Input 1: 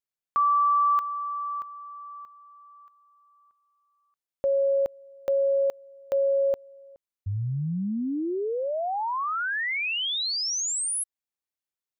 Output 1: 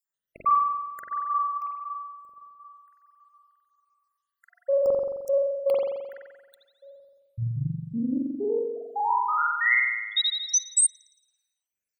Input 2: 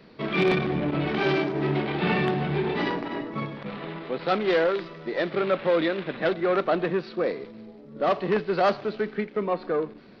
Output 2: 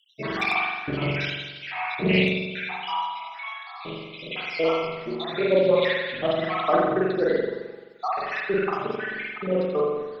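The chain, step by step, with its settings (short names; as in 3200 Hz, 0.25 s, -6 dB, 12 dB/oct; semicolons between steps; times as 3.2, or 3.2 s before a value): random spectral dropouts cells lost 80%; high shelf 2900 Hz +11.5 dB; notches 50/100/150/200/250/300/350 Hz; spring tank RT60 1.2 s, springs 43 ms, chirp 50 ms, DRR -5.5 dB; Doppler distortion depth 0.13 ms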